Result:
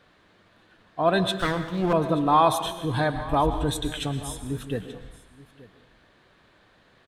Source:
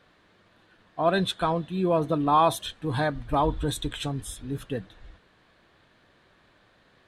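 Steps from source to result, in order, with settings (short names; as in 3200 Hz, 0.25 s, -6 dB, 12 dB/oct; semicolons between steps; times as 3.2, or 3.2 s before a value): 1.33–1.93 minimum comb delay 0.61 ms; echo 0.88 s -20 dB; reverb RT60 0.80 s, pre-delay 0.103 s, DRR 10 dB; gain +1.5 dB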